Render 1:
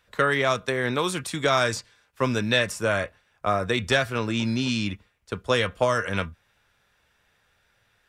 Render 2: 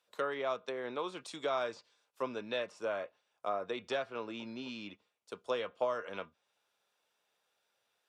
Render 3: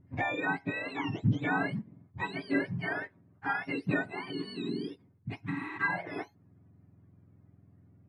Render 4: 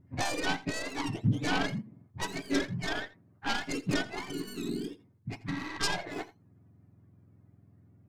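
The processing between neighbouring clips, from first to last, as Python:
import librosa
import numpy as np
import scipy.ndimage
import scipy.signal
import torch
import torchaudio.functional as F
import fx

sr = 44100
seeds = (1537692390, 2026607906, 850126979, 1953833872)

y1 = fx.env_lowpass_down(x, sr, base_hz=2500.0, full_db=-21.5)
y1 = scipy.signal.sosfilt(scipy.signal.butter(2, 400.0, 'highpass', fs=sr, output='sos'), y1)
y1 = fx.peak_eq(y1, sr, hz=1800.0, db=-10.5, octaves=0.88)
y1 = y1 * 10.0 ** (-8.5 / 20.0)
y2 = fx.octave_mirror(y1, sr, pivot_hz=1000.0)
y2 = fx.bass_treble(y2, sr, bass_db=13, treble_db=-9)
y2 = fx.spec_repair(y2, sr, seeds[0], start_s=5.52, length_s=0.23, low_hz=290.0, high_hz=8100.0, source='before')
y2 = y2 * 10.0 ** (5.0 / 20.0)
y3 = fx.tracing_dist(y2, sr, depth_ms=0.41)
y3 = y3 + 10.0 ** (-18.5 / 20.0) * np.pad(y3, (int(84 * sr / 1000.0), 0))[:len(y3)]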